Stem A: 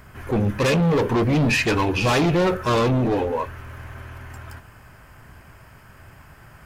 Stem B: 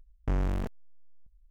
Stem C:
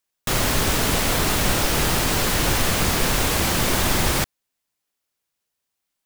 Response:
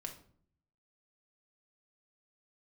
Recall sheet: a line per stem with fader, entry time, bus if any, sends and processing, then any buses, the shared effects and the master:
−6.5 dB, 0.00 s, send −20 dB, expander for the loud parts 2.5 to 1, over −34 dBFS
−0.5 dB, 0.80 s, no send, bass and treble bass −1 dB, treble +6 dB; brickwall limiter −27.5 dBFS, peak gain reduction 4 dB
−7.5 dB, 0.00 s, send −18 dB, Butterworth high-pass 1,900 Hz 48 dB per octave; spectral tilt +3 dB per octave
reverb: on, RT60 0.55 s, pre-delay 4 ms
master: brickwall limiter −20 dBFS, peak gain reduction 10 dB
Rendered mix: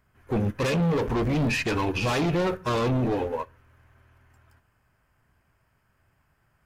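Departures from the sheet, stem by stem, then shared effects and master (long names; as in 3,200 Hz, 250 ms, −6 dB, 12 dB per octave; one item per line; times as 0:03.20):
stem A −6.5 dB → +4.0 dB
stem C: muted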